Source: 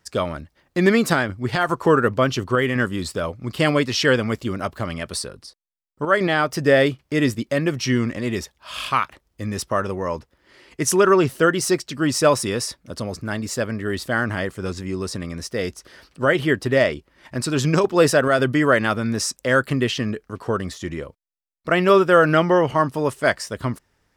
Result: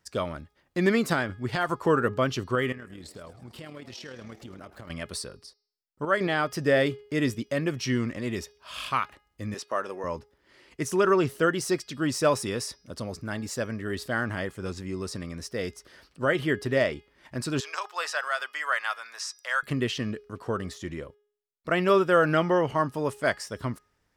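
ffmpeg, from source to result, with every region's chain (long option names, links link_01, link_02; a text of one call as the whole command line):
ffmpeg -i in.wav -filter_complex "[0:a]asettb=1/sr,asplit=3[link_01][link_02][link_03];[link_01]atrim=end=2.724[link_04];[link_02]atrim=start=2.72:end=4.9,asetpts=PTS-STARTPTS,afade=type=in:duration=0.004:curve=qsin,afade=type=out:start_time=2.176:duration=0.004:curve=qsin,acompressor=threshold=-32dB:ratio=5:attack=3.2:release=140:knee=1:detection=peak,tremolo=f=38:d=0.462,asplit=7[link_05][link_06][link_07][link_08][link_09][link_10][link_11];[link_06]adelay=105,afreqshift=110,volume=-15dB[link_12];[link_07]adelay=210,afreqshift=220,volume=-19.3dB[link_13];[link_08]adelay=315,afreqshift=330,volume=-23.6dB[link_14];[link_09]adelay=420,afreqshift=440,volume=-27.9dB[link_15];[link_10]adelay=525,afreqshift=550,volume=-32.2dB[link_16];[link_11]adelay=630,afreqshift=660,volume=-36.5dB[link_17];[link_05][link_12][link_13][link_14][link_15][link_16][link_17]amix=inputs=7:normalize=0,atrim=end_sample=96138[link_18];[link_03]atrim=start=4.896[link_19];[link_04][link_18]acrossfade=duration=0.004:curve1=hsin:curve2=qsin[link_20];[link_20][link_19]acrossfade=duration=0.004:curve1=qsin:curve2=hsin,asettb=1/sr,asplit=3[link_21][link_22][link_23];[link_21]atrim=end=9.544[link_24];[link_22]atrim=start=9.54:end=10.04,asetpts=PTS-STARTPTS,afade=type=in:duration=0.004:curve=qsin,afade=type=out:start_time=0.496:duration=0.004:curve=qsin,highpass=370,acrossover=split=6800[link_25][link_26];[link_26]acompressor=threshold=-46dB:ratio=4:attack=1:release=60[link_27];[link_25][link_27]amix=inputs=2:normalize=0[link_28];[link_23]atrim=start=10.036[link_29];[link_24][link_28]acrossfade=duration=0.004:curve1=hsin:curve2=qsin[link_30];[link_30][link_29]acrossfade=duration=0.004:curve1=qsin:curve2=hsin,asettb=1/sr,asplit=3[link_31][link_32][link_33];[link_31]atrim=end=17.604[link_34];[link_32]atrim=start=17.6:end=19.63,asetpts=PTS-STARTPTS,afade=type=in:duration=0.004:curve=qsin,afade=type=out:start_time=2.026:duration=0.004:curve=qsin,acrossover=split=6600[link_35][link_36];[link_36]acompressor=threshold=-41dB:ratio=4:attack=1:release=60[link_37];[link_35][link_37]amix=inputs=2:normalize=0,highpass=frequency=840:width=0.5412,highpass=frequency=840:width=1.3066[link_38];[link_33]atrim=start=19.626[link_39];[link_34][link_38]acrossfade=duration=0.004:curve1=hsin:curve2=qsin[link_40];[link_40][link_39]acrossfade=duration=0.004:curve1=qsin:curve2=hsin,deesser=0.4,bandreject=frequency=415.5:width_type=h:width=4,bandreject=frequency=831:width_type=h:width=4,bandreject=frequency=1246.5:width_type=h:width=4,bandreject=frequency=1662:width_type=h:width=4,bandreject=frequency=2077.5:width_type=h:width=4,bandreject=frequency=2493:width_type=h:width=4,bandreject=frequency=2908.5:width_type=h:width=4,bandreject=frequency=3324:width_type=h:width=4,bandreject=frequency=3739.5:width_type=h:width=4,bandreject=frequency=4155:width_type=h:width=4,bandreject=frequency=4570.5:width_type=h:width=4,bandreject=frequency=4986:width_type=h:width=4,bandreject=frequency=5401.5:width_type=h:width=4,bandreject=frequency=5817:width_type=h:width=4,volume=-6.5dB" out.wav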